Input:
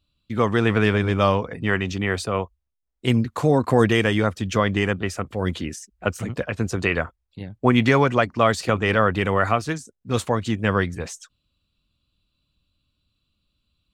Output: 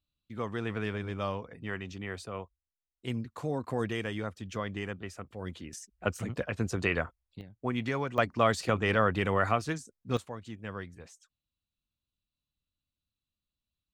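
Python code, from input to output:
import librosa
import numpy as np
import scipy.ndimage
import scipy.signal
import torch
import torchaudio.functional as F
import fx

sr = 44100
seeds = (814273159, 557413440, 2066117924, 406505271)

y = fx.gain(x, sr, db=fx.steps((0.0, -15.0), (5.73, -7.0), (7.41, -15.0), (8.18, -7.0), (10.17, -19.0)))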